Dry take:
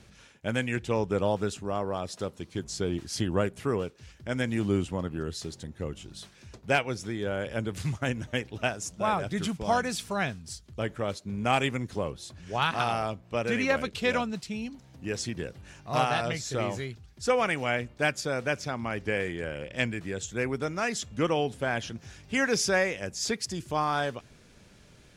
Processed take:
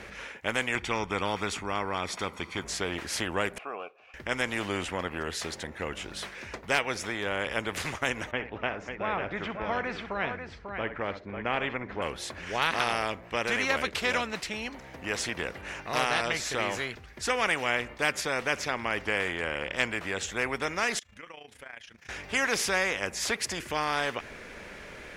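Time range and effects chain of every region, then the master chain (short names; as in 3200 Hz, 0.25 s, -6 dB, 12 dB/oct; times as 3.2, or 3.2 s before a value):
0.75–2.65 high shelf 11000 Hz -7.5 dB + comb 0.9 ms, depth 58%
3.58–4.14 vowel filter a + low shelf 110 Hz -10.5 dB + notches 50/100/150 Hz
8.31–12.02 tape spacing loss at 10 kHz 41 dB + tapped delay 63/544 ms -17/-12.5 dB
20.99–22.09 passive tone stack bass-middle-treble 5-5-5 + AM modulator 28 Hz, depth 60% + compressor 8:1, threshold -55 dBFS
whole clip: graphic EQ 125/500/1000/2000/4000/8000 Hz -9/+7/+4/+12/-3/-4 dB; spectral compressor 2:1; gain -8 dB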